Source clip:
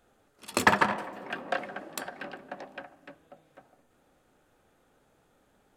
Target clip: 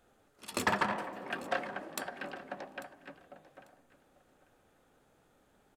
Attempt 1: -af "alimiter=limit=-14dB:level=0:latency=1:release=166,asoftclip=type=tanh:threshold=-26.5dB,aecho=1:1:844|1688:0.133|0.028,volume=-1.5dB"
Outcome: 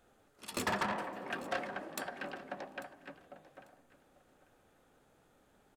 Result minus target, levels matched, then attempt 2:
soft clipping: distortion +8 dB
-af "alimiter=limit=-14dB:level=0:latency=1:release=166,asoftclip=type=tanh:threshold=-18dB,aecho=1:1:844|1688:0.133|0.028,volume=-1.5dB"

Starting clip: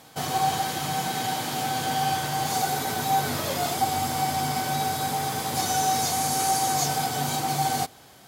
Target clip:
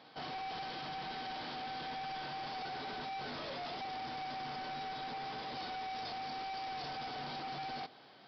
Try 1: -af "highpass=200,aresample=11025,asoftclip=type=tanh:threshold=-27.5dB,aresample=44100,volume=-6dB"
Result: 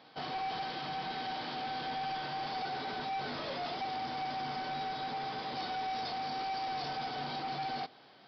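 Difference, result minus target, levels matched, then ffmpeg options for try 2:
soft clipping: distortion −4 dB
-af "highpass=200,aresample=11025,asoftclip=type=tanh:threshold=-34dB,aresample=44100,volume=-6dB"

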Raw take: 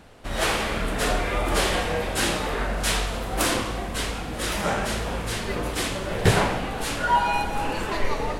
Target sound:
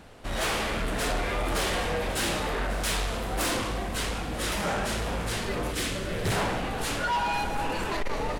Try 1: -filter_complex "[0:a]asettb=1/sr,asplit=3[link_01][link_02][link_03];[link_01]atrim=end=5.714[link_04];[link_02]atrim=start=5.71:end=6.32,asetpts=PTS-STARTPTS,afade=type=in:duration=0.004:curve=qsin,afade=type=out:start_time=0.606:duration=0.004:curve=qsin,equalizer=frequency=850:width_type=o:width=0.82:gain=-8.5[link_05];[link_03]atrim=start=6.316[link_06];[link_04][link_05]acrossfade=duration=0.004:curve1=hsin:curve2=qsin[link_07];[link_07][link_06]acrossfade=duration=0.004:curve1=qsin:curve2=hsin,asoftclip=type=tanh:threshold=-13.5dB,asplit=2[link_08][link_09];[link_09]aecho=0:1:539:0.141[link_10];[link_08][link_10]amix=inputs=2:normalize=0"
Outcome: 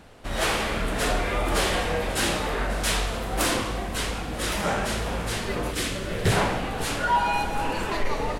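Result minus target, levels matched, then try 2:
soft clipping: distortion −9 dB
-filter_complex "[0:a]asettb=1/sr,asplit=3[link_01][link_02][link_03];[link_01]atrim=end=5.714[link_04];[link_02]atrim=start=5.71:end=6.32,asetpts=PTS-STARTPTS,afade=type=in:duration=0.004:curve=qsin,afade=type=out:start_time=0.606:duration=0.004:curve=qsin,equalizer=frequency=850:width_type=o:width=0.82:gain=-8.5[link_05];[link_03]atrim=start=6.316[link_06];[link_04][link_05]acrossfade=duration=0.004:curve1=hsin:curve2=qsin[link_07];[link_07][link_06]acrossfade=duration=0.004:curve1=qsin:curve2=hsin,asoftclip=type=tanh:threshold=-23.5dB,asplit=2[link_08][link_09];[link_09]aecho=0:1:539:0.141[link_10];[link_08][link_10]amix=inputs=2:normalize=0"

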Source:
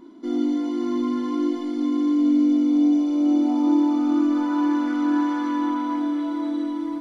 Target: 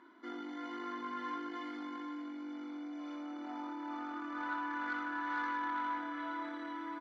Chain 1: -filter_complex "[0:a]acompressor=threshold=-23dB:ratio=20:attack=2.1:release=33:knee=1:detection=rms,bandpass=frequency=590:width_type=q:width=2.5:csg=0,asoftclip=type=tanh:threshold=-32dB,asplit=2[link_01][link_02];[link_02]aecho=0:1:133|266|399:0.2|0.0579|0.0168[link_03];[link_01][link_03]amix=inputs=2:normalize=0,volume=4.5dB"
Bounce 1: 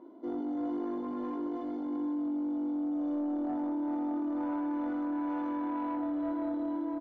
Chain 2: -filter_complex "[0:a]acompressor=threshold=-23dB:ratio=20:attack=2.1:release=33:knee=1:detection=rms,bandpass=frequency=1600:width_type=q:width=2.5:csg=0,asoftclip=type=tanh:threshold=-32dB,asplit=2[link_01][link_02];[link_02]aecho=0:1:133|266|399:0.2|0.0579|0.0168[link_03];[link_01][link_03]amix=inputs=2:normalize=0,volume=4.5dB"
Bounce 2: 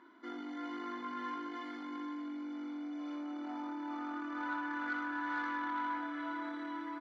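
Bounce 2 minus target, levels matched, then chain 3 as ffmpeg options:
echo 42 ms late
-filter_complex "[0:a]acompressor=threshold=-23dB:ratio=20:attack=2.1:release=33:knee=1:detection=rms,bandpass=frequency=1600:width_type=q:width=2.5:csg=0,asoftclip=type=tanh:threshold=-32dB,asplit=2[link_01][link_02];[link_02]aecho=0:1:91|182|273:0.2|0.0579|0.0168[link_03];[link_01][link_03]amix=inputs=2:normalize=0,volume=4.5dB"

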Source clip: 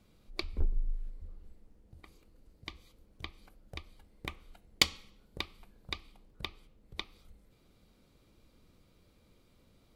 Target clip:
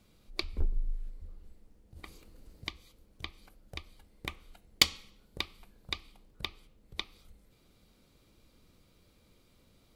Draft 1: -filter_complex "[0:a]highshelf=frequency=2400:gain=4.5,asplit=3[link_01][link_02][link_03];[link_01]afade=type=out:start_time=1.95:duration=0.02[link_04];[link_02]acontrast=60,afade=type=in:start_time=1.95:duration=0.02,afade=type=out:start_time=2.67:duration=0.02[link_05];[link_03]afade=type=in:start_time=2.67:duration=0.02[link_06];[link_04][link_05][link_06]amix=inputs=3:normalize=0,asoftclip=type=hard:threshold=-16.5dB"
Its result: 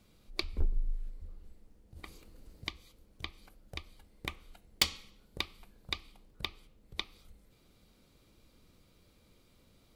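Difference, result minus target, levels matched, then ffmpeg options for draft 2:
hard clipping: distortion +12 dB
-filter_complex "[0:a]highshelf=frequency=2400:gain=4.5,asplit=3[link_01][link_02][link_03];[link_01]afade=type=out:start_time=1.95:duration=0.02[link_04];[link_02]acontrast=60,afade=type=in:start_time=1.95:duration=0.02,afade=type=out:start_time=2.67:duration=0.02[link_05];[link_03]afade=type=in:start_time=2.67:duration=0.02[link_06];[link_04][link_05][link_06]amix=inputs=3:normalize=0,asoftclip=type=hard:threshold=-7.5dB"

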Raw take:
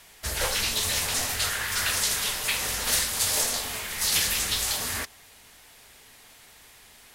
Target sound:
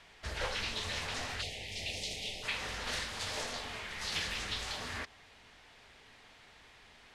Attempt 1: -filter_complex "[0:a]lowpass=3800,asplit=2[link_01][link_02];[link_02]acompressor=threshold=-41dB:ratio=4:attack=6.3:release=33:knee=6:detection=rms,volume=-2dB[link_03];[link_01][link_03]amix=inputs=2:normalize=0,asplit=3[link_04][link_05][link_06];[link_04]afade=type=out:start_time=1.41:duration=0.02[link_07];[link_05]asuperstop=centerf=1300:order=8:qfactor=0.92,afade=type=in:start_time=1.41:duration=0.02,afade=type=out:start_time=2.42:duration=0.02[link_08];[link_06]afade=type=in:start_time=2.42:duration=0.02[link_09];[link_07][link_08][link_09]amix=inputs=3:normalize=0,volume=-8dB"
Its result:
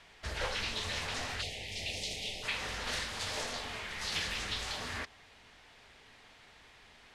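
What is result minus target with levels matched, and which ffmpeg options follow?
downward compressor: peak gain reduction −5.5 dB
-filter_complex "[0:a]lowpass=3800,asplit=2[link_01][link_02];[link_02]acompressor=threshold=-48.5dB:ratio=4:attack=6.3:release=33:knee=6:detection=rms,volume=-2dB[link_03];[link_01][link_03]amix=inputs=2:normalize=0,asplit=3[link_04][link_05][link_06];[link_04]afade=type=out:start_time=1.41:duration=0.02[link_07];[link_05]asuperstop=centerf=1300:order=8:qfactor=0.92,afade=type=in:start_time=1.41:duration=0.02,afade=type=out:start_time=2.42:duration=0.02[link_08];[link_06]afade=type=in:start_time=2.42:duration=0.02[link_09];[link_07][link_08][link_09]amix=inputs=3:normalize=0,volume=-8dB"

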